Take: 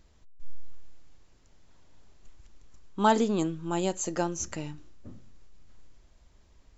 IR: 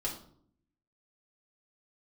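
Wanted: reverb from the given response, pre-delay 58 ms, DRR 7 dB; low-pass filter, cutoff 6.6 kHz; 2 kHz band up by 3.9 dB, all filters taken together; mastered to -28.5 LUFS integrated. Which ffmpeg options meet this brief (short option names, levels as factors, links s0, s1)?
-filter_complex "[0:a]lowpass=6600,equalizer=f=2000:t=o:g=5.5,asplit=2[s0][s1];[1:a]atrim=start_sample=2205,adelay=58[s2];[s1][s2]afir=irnorm=-1:irlink=0,volume=0.316[s3];[s0][s3]amix=inputs=2:normalize=0,volume=0.891"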